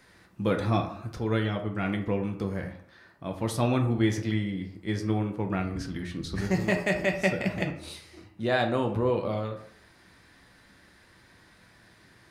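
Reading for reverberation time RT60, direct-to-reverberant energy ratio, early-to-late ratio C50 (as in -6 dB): 0.60 s, 3.0 dB, 9.0 dB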